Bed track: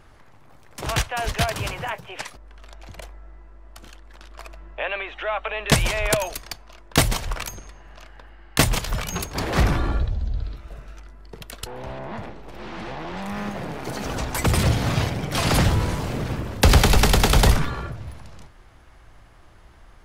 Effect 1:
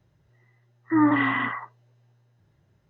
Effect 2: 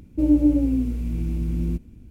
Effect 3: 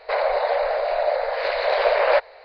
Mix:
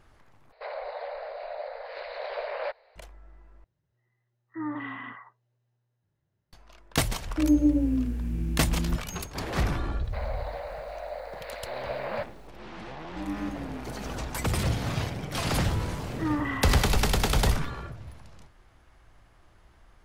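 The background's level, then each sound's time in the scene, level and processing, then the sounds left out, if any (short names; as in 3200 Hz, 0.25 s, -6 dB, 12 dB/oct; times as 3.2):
bed track -7.5 dB
0.52 replace with 3 -15 dB
3.64 replace with 1 -14 dB
7.2 add 2 -4 dB
10.04 add 3 -15.5 dB + bit-crush 8-bit
12.98 add 2 -17.5 dB
15.29 add 1 -9 dB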